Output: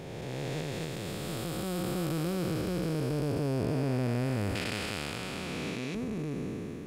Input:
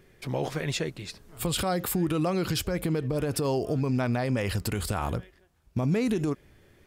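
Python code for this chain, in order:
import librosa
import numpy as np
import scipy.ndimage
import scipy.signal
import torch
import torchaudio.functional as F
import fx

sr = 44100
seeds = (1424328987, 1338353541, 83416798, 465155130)

y = fx.spec_blur(x, sr, span_ms=1030.0)
y = fx.recorder_agc(y, sr, target_db=-25.0, rise_db_per_s=6.3, max_gain_db=30)
y = fx.weighting(y, sr, curve='D', at=(4.55, 5.95))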